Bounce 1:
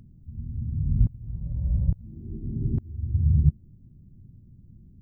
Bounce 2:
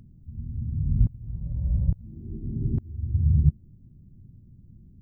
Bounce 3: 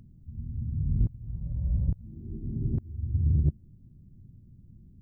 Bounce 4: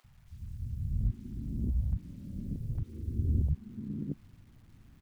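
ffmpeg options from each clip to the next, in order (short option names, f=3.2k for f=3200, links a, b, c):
-af anull
-af "asoftclip=type=tanh:threshold=-13.5dB,volume=-2dB"
-filter_complex "[0:a]tremolo=f=130:d=0.75,acrusher=bits=10:mix=0:aa=0.000001,acrossover=split=160|570[a][b][c];[a]adelay=40[d];[b]adelay=630[e];[d][e][c]amix=inputs=3:normalize=0"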